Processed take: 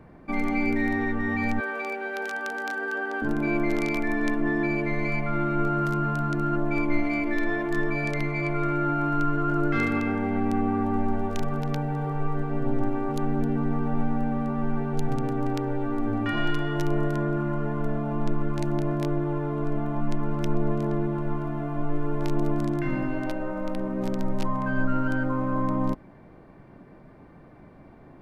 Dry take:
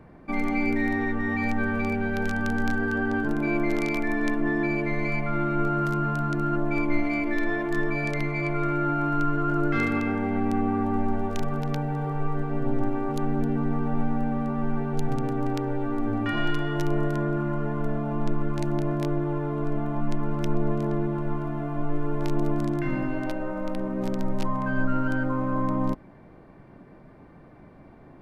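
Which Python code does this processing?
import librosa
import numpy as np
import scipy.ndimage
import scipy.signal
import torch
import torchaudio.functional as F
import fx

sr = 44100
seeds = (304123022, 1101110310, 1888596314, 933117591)

y = fx.highpass(x, sr, hz=390.0, slope=24, at=(1.6, 3.22))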